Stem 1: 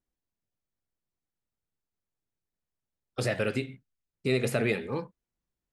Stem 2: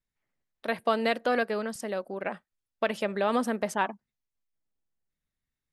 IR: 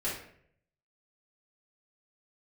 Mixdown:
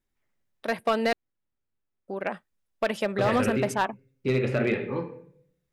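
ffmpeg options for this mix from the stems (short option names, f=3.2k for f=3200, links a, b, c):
-filter_complex "[0:a]lowpass=2.9k,bandreject=f=660:w=12,volume=-1dB,asplit=2[a][b];[b]volume=-7.5dB[c];[1:a]volume=2.5dB,asplit=3[d][e][f];[d]atrim=end=1.13,asetpts=PTS-STARTPTS,afade=t=out:st=1.126:d=0.004:c=hsin[g];[e]atrim=start=1.13:end=2.08,asetpts=PTS-STARTPTS,volume=0[h];[f]atrim=start=2.08,asetpts=PTS-STARTPTS,afade=t=in:d=0.004:c=hsin[i];[g][h][i]concat=n=3:v=0:a=1[j];[2:a]atrim=start_sample=2205[k];[c][k]afir=irnorm=-1:irlink=0[l];[a][j][l]amix=inputs=3:normalize=0,bandreject=f=4.3k:w=24,asoftclip=type=hard:threshold=-16.5dB"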